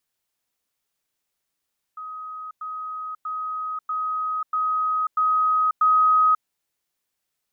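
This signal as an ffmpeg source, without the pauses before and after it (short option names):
-f lavfi -i "aevalsrc='pow(10,(-32+3*floor(t/0.64))/20)*sin(2*PI*1260*t)*clip(min(mod(t,0.64),0.54-mod(t,0.64))/0.005,0,1)':d=4.48:s=44100"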